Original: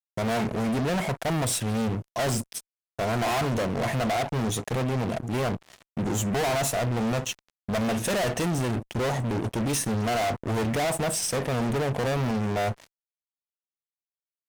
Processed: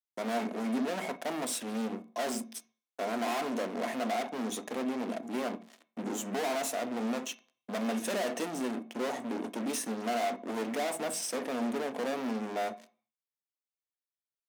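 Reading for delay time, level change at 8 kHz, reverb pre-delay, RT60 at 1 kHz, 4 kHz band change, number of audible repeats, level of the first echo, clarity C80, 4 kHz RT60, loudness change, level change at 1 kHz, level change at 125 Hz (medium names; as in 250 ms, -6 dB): no echo, -7.5 dB, 3 ms, 0.45 s, -7.5 dB, no echo, no echo, 23.0 dB, 0.45 s, -7.0 dB, -6.0 dB, -23.0 dB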